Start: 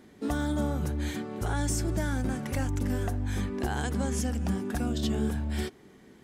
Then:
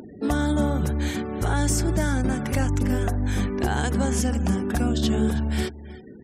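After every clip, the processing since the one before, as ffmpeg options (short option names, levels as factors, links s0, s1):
-af "aecho=1:1:322:0.158,afftfilt=real='re*gte(hypot(re,im),0.00282)':imag='im*gte(hypot(re,im),0.00282)':win_size=1024:overlap=0.75,acompressor=mode=upward:threshold=0.00891:ratio=2.5,volume=2.11"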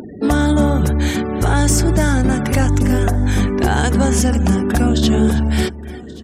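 -af "aecho=1:1:1129|2258:0.0708|0.0127,asoftclip=type=tanh:threshold=0.237,volume=2.82"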